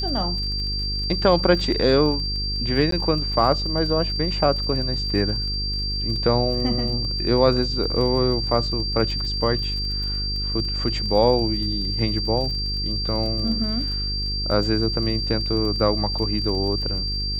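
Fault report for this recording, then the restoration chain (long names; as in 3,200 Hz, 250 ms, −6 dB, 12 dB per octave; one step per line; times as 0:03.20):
mains buzz 50 Hz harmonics 9 −28 dBFS
surface crackle 35 per second −31 dBFS
whistle 4,700 Hz −26 dBFS
0:02.91–0:02.92: drop-out 13 ms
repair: click removal
hum removal 50 Hz, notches 9
notch filter 4,700 Hz, Q 30
repair the gap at 0:02.91, 13 ms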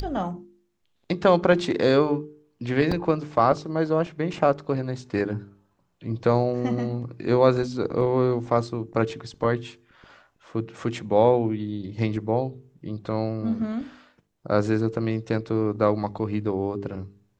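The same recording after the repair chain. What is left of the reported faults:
none of them is left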